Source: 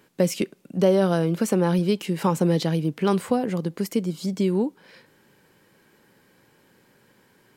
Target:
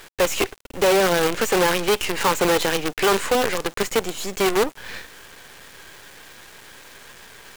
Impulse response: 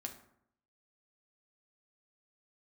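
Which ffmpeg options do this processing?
-filter_complex "[0:a]highpass=420,equalizer=f=430:t=q:w=4:g=4,equalizer=f=660:t=q:w=4:g=-7,equalizer=f=1.7k:t=q:w=4:g=4,equalizer=f=2.6k:t=q:w=4:g=4,equalizer=f=4.9k:t=q:w=4:g=-8,equalizer=f=7k:t=q:w=4:g=8,lowpass=f=9k:w=0.5412,lowpass=f=9k:w=1.3066,asplit=2[a][b];[b]highpass=f=720:p=1,volume=26dB,asoftclip=type=tanh:threshold=-12.5dB[c];[a][c]amix=inputs=2:normalize=0,lowpass=f=4.8k:p=1,volume=-6dB,acrusher=bits=4:dc=4:mix=0:aa=0.000001"

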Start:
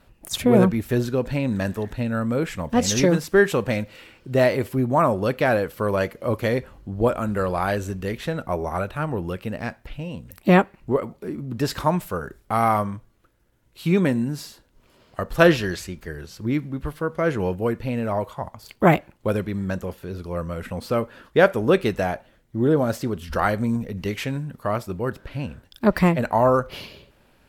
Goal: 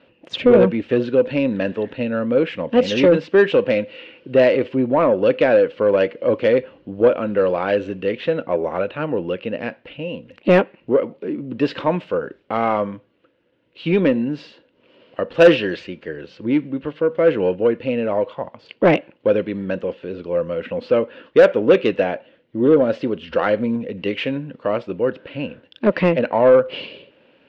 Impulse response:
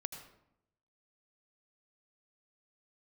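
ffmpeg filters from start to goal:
-af "highpass=190,equalizer=f=290:t=q:w=4:g=6,equalizer=f=510:t=q:w=4:g=10,equalizer=f=770:t=q:w=4:g=-4,equalizer=f=1.2k:t=q:w=4:g=-4,equalizer=f=2.8k:t=q:w=4:g=8,lowpass=f=3.7k:w=0.5412,lowpass=f=3.7k:w=1.3066,acontrast=45,volume=-3.5dB"

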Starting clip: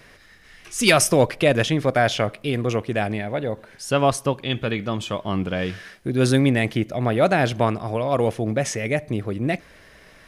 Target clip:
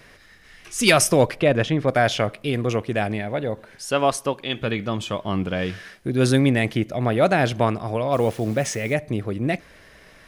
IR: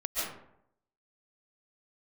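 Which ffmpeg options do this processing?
-filter_complex "[0:a]asettb=1/sr,asplit=3[a][b][c];[a]atrim=end=1.404[d];[b]atrim=start=1.4:end=1.88,asetpts=PTS-STARTPTS,afade=t=in:d=0.004:c=qsin,afade=t=out:st=0.476:d=0.004:c=qsin,lowpass=f=2.3k:p=1[e];[c]atrim=start=1.876[f];[d][e]acrossfade=d=0.004:c1=hsin:c2=qsin[g];[g][f]acrossfade=d=0.004:c1=qsin:c2=hsin,asettb=1/sr,asplit=3[h][i][j];[h]atrim=end=3.854[k];[i]atrim=start=3.85:end=4.59,asetpts=PTS-STARTPTS,afade=t=in:d=0.004:c=qsin,afade=t=out:st=0.736:d=0.004:c=qsin,equalizer=f=86:t=o:w=2:g=-12[l];[j]atrim=start=4.586[m];[k][l]acrossfade=d=0.004:c1=hsin:c2=qsin[n];[n][m]acrossfade=d=0.004:c1=qsin:c2=hsin,asettb=1/sr,asplit=3[o][p][q];[o]atrim=end=8.134[r];[p]atrim=start=8.13:end=8.94,asetpts=PTS-STARTPTS,afade=t=in:d=0.004:c=qsin,afade=t=out:st=0.806:d=0.004:c=qsin,acrusher=bits=8:dc=4:mix=0:aa=0.000001[s];[q]atrim=start=8.936[t];[r][s]acrossfade=d=0.004:c1=hsin:c2=qsin[u];[u][t]acrossfade=d=0.004:c1=qsin:c2=hsin"

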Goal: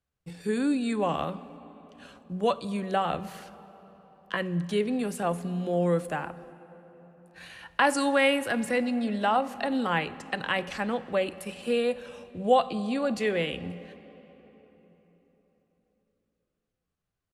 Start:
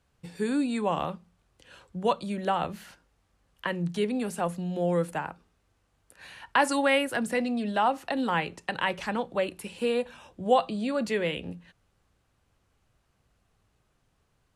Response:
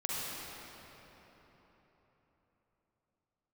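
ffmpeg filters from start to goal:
-filter_complex "[0:a]bandreject=f=930:w=9,agate=range=-16dB:threshold=-56dB:ratio=16:detection=peak,atempo=0.84,asplit=2[a][b];[1:a]atrim=start_sample=2205[c];[b][c]afir=irnorm=-1:irlink=0,volume=-20dB[d];[a][d]amix=inputs=2:normalize=0"

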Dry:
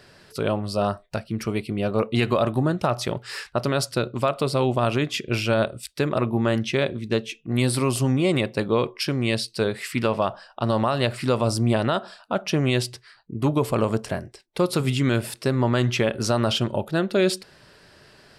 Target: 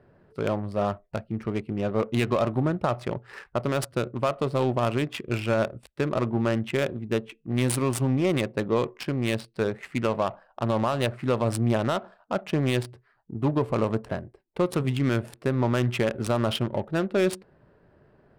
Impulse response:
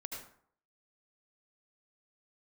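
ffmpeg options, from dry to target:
-af "highshelf=f=7.5k:t=q:w=1.5:g=9.5,adynamicsmooth=sensitivity=2.5:basefreq=900,volume=-2.5dB"

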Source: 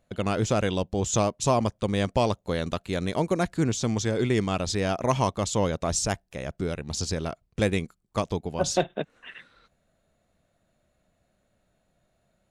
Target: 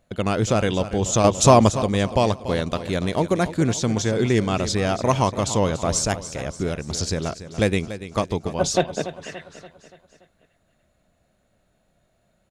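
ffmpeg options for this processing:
-filter_complex "[0:a]aecho=1:1:287|574|861|1148|1435:0.224|0.112|0.056|0.028|0.014,asettb=1/sr,asplit=3[a][b][c];[a]atrim=end=1.244[d];[b]atrim=start=1.24:end=1.82,asetpts=PTS-STARTPTS,afade=t=in:d=0.004:c=qsin,afade=t=out:st=0.576:d=0.004:c=qsin,acontrast=63[e];[c]atrim=start=1.816[f];[d][e]acrossfade=d=0.004:c1=hsin:c2=qsin[g];[g][f]acrossfade=d=0.004:c1=qsin:c2=hsin,volume=4dB"

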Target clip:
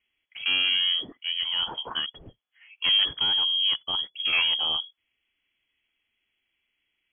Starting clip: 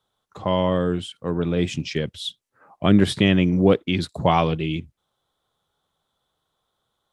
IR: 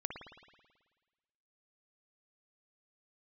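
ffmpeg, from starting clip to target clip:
-filter_complex "[0:a]asettb=1/sr,asplit=3[a][b][c];[a]atrim=end=1.184[d];[b]atrim=start=1.18:end=2.07,asetpts=PTS-STARTPTS,afade=t=in:d=0.004:c=qsin,afade=t=out:st=0.886:d=0.004:c=qsin,highpass=f=370:p=1[e];[c]atrim=start=2.066[f];[d][e]acrossfade=d=0.004:c1=hsin:c2=qsin[g];[g][f]acrossfade=d=0.004:c1=qsin:c2=hsin,asettb=1/sr,asplit=3[h][i][j];[h]atrim=end=3.054[k];[i]atrim=start=3.05:end=4.33,asetpts=PTS-STARTPTS,afade=t=in:d=0.004:c=qsin,afade=t=out:st=1.276:d=0.004:c=qsin,equalizer=f=700:w=0.4:g=-11.5[l];[j]atrim=start=4.326[m];[k][l]acrossfade=d=0.004:c1=hsin:c2=qsin[n];[n][m]acrossfade=d=0.004:c1=qsin:c2=hsin,asoftclip=type=tanh:threshold=-17dB,lowpass=f=2.9k:t=q:w=0.5098,lowpass=f=2.9k:t=q:w=0.6013,lowpass=f=2.9k:t=q:w=0.9,lowpass=f=2.9k:t=q:w=2.563,afreqshift=-3400"

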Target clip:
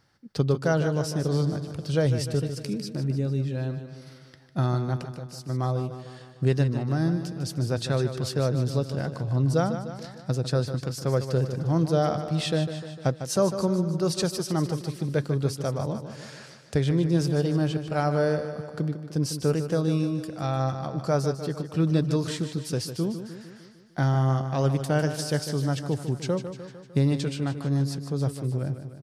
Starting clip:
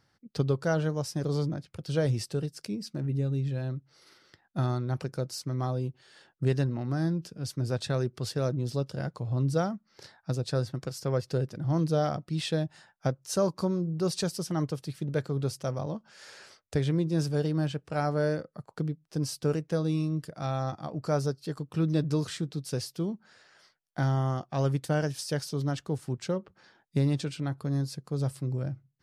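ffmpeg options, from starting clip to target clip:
-filter_complex "[0:a]asplit=3[a][b][c];[a]afade=t=out:st=5.02:d=0.02[d];[b]acompressor=threshold=-42dB:ratio=5,afade=t=in:st=5.02:d=0.02,afade=t=out:st=5.48:d=0.02[e];[c]afade=t=in:st=5.48:d=0.02[f];[d][e][f]amix=inputs=3:normalize=0,asplit=2[g][h];[h]aecho=0:1:151|302|453|604|755|906|1057:0.316|0.183|0.106|0.0617|0.0358|0.0208|0.012[i];[g][i]amix=inputs=2:normalize=0,volume=3.5dB"

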